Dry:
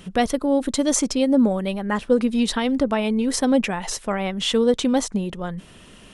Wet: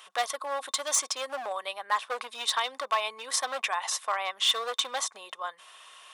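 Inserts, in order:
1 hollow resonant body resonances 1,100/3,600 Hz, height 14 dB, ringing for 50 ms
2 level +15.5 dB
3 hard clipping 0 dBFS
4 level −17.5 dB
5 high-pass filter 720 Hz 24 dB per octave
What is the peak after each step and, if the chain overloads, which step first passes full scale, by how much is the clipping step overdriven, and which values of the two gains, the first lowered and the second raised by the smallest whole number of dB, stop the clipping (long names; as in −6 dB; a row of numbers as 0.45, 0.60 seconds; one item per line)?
−6.5, +9.0, 0.0, −17.5, −14.5 dBFS
step 2, 9.0 dB
step 2 +6.5 dB, step 4 −8.5 dB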